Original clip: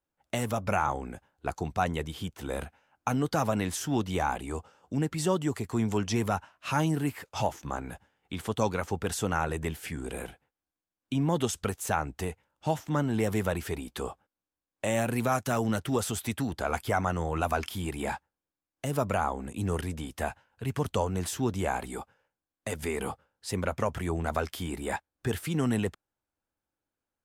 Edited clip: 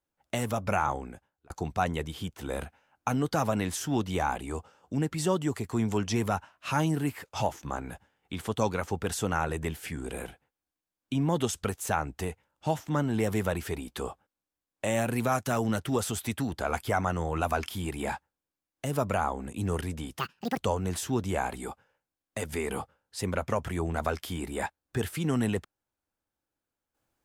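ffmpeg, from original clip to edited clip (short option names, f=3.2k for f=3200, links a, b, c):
-filter_complex "[0:a]asplit=4[a][b][c][d];[a]atrim=end=1.5,asetpts=PTS-STARTPTS,afade=t=out:st=0.93:d=0.57[e];[b]atrim=start=1.5:end=20.194,asetpts=PTS-STARTPTS,afade=t=in:d=0.004:c=hsin[f];[c]atrim=start=20.19:end=20.88,asetpts=PTS-STARTPTS,asetrate=78057,aresample=44100[g];[d]atrim=start=20.876[h];[e][f]concat=n=2:v=0:a=1[i];[i][g]acrossfade=d=0.004:c1=hsin:c2=hsin[j];[j][h]acrossfade=d=0.004:c1=hsin:c2=hsin"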